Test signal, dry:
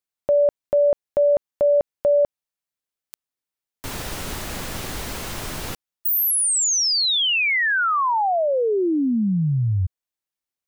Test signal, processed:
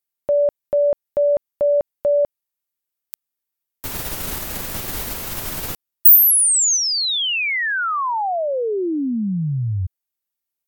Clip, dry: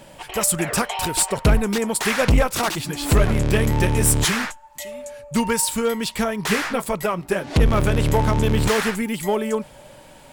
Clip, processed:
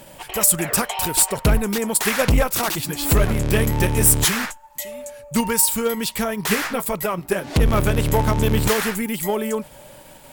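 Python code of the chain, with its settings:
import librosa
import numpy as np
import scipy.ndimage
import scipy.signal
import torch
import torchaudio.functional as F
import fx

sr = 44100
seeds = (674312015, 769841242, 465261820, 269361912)

p1 = fx.peak_eq(x, sr, hz=16000.0, db=14.0, octaves=0.71)
p2 = fx.level_steps(p1, sr, step_db=9)
p3 = p1 + (p2 * librosa.db_to_amplitude(-2.0))
y = p3 * librosa.db_to_amplitude(-4.0)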